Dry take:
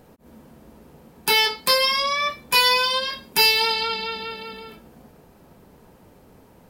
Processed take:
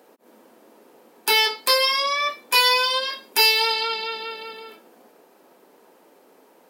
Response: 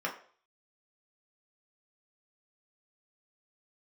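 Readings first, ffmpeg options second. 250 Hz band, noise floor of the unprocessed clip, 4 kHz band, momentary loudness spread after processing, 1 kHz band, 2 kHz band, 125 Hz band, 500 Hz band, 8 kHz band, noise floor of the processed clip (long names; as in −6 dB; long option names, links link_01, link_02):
can't be measured, −53 dBFS, 0.0 dB, 14 LU, 0.0 dB, 0.0 dB, below −15 dB, 0.0 dB, 0.0 dB, −56 dBFS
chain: -af "highpass=frequency=300:width=0.5412,highpass=frequency=300:width=1.3066"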